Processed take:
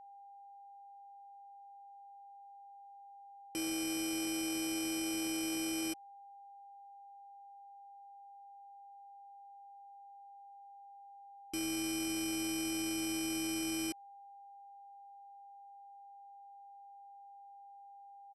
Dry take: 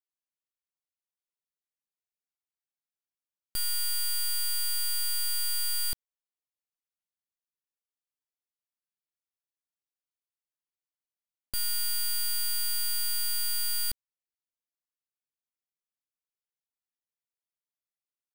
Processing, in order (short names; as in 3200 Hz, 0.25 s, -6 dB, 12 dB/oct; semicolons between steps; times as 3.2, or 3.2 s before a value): in parallel at -10 dB: sample-and-hold 18×; on the sum: ring modulator 560 Hz; pitch shift -9.5 st; whine 800 Hz -45 dBFS; gain -7 dB